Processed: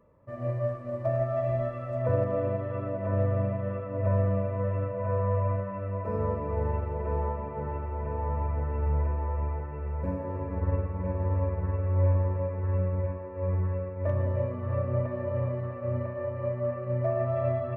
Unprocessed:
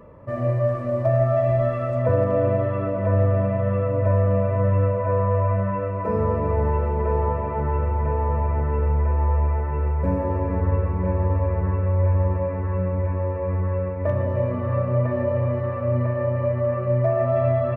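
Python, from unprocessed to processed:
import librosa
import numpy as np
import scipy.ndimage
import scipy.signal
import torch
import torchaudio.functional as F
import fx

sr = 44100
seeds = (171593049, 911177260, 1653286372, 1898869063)

y = fx.echo_filtered(x, sr, ms=649, feedback_pct=68, hz=2000.0, wet_db=-11.0)
y = fx.upward_expand(y, sr, threshold_db=-36.0, expansion=1.5)
y = F.gain(torch.from_numpy(y), -5.5).numpy()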